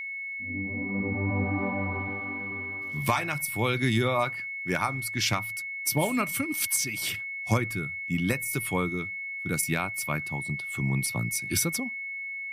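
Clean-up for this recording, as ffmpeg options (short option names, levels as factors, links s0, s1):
-af "bandreject=f=2200:w=30"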